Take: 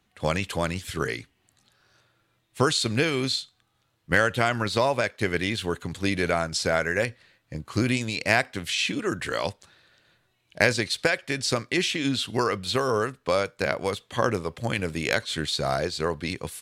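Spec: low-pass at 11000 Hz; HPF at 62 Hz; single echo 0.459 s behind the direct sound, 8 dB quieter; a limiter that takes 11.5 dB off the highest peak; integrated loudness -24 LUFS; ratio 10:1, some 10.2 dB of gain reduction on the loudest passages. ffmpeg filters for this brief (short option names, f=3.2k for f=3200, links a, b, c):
-af "highpass=62,lowpass=11k,acompressor=threshold=-26dB:ratio=10,alimiter=limit=-22dB:level=0:latency=1,aecho=1:1:459:0.398,volume=10dB"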